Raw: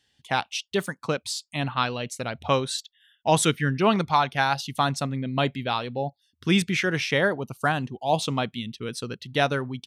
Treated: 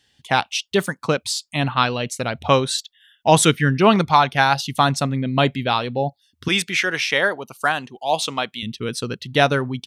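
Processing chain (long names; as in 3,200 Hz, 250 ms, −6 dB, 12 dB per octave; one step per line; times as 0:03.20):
0:06.48–0:08.63: high-pass filter 800 Hz 6 dB per octave
level +6.5 dB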